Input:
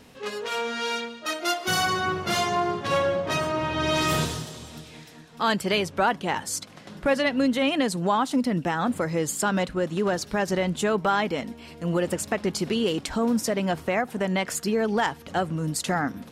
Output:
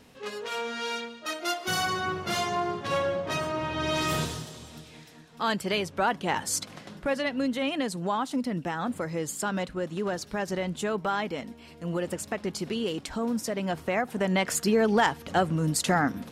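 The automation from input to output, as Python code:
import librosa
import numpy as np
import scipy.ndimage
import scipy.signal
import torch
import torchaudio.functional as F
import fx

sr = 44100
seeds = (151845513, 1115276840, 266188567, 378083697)

y = fx.gain(x, sr, db=fx.line((5.97, -4.0), (6.74, 3.0), (7.05, -5.5), (13.49, -5.5), (14.57, 1.5)))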